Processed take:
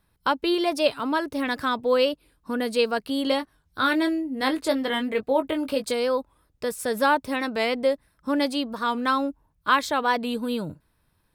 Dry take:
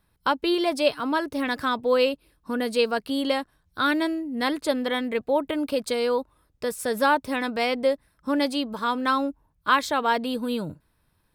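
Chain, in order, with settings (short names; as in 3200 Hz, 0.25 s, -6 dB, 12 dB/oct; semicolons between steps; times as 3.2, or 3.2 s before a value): 3.24–5.92 doubler 19 ms -7 dB; record warp 45 rpm, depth 100 cents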